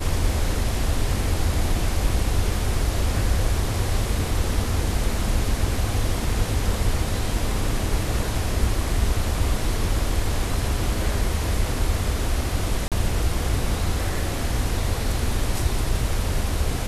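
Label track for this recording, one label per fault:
12.880000	12.920000	gap 37 ms

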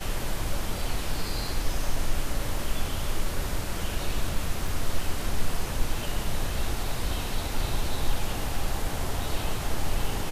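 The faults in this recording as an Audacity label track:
4.680000	4.680000	gap 3.6 ms

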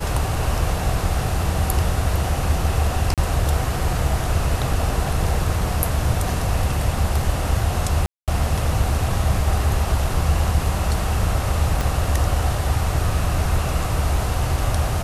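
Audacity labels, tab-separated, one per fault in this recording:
3.140000	3.180000	gap 37 ms
8.060000	8.280000	gap 0.217 s
11.810000	11.810000	pop

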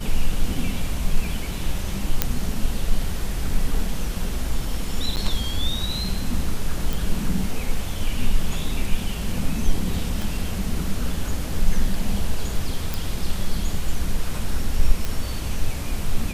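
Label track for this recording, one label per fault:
2.220000	2.220000	pop -2 dBFS
5.160000	5.170000	gap 9 ms
6.930000	6.930000	pop
10.220000	10.220000	pop
12.940000	12.940000	pop
15.050000	15.050000	pop

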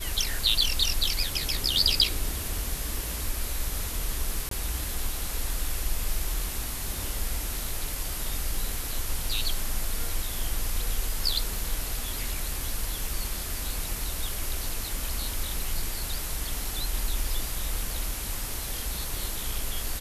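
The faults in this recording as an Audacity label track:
4.490000	4.510000	gap 23 ms

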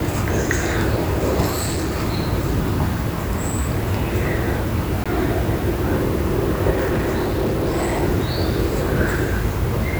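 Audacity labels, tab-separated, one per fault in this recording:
1.500000	1.960000	clipped -19 dBFS
5.040000	5.060000	gap 16 ms
6.700000	8.030000	clipped -16.5 dBFS

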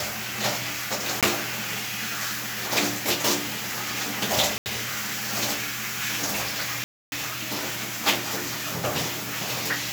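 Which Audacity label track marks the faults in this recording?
1.210000	1.230000	gap 17 ms
4.580000	4.660000	gap 79 ms
6.840000	7.120000	gap 0.281 s

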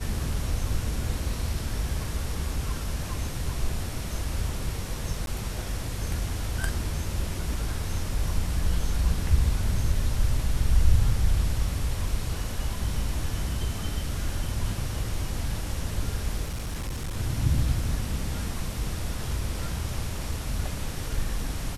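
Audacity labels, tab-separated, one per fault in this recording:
5.260000	5.270000	gap 12 ms
16.450000	17.170000	clipped -27.5 dBFS

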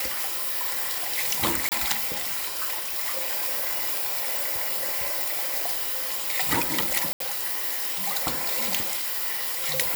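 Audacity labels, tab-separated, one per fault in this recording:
1.690000	1.720000	gap 28 ms
7.130000	7.200000	gap 73 ms

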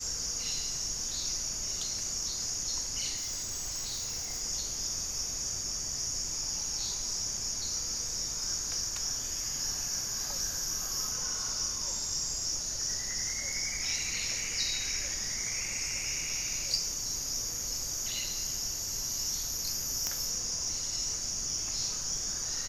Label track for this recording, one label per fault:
3.160000	4.420000	clipped -32 dBFS
20.070000	20.070000	pop -16 dBFS

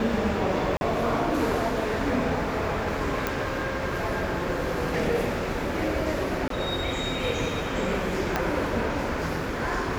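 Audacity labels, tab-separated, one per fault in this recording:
0.770000	0.810000	gap 41 ms
3.270000	3.270000	pop
6.480000	6.500000	gap 23 ms
8.360000	8.360000	pop -10 dBFS

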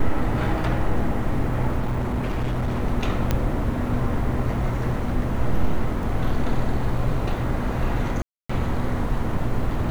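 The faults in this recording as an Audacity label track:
1.790000	2.830000	clipped -20 dBFS
3.310000	3.310000	pop -8 dBFS
6.030000	6.030000	gap 2.4 ms
8.220000	8.490000	gap 0.275 s

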